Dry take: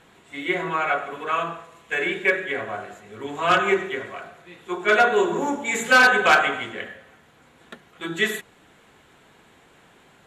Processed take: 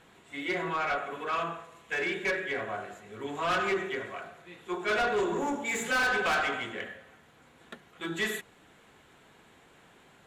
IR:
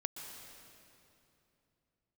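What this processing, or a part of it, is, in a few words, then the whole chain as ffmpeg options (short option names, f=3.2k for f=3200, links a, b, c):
saturation between pre-emphasis and de-emphasis: -af "highshelf=f=5.9k:g=10.5,asoftclip=type=tanh:threshold=-19.5dB,highshelf=f=5.9k:g=-10.5,volume=-4dB"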